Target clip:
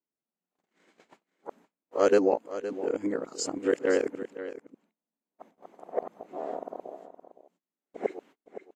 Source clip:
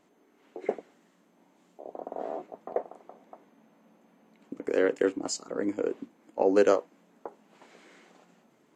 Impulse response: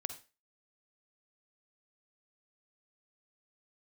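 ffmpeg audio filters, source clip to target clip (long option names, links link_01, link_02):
-af "areverse,agate=range=-34dB:threshold=-53dB:ratio=16:detection=peak,aecho=1:1:516:0.224"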